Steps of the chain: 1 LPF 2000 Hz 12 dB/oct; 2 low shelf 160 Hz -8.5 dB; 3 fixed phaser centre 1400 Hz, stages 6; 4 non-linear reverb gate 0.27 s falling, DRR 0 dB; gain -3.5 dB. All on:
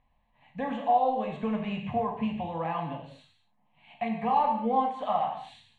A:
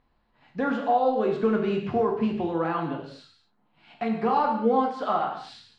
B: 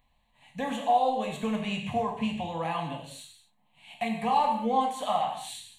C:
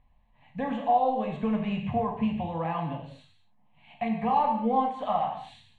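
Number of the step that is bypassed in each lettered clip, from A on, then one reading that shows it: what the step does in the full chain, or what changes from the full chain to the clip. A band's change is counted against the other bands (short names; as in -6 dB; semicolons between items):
3, 1 kHz band -4.5 dB; 1, 4 kHz band +8.5 dB; 2, 125 Hz band +3.5 dB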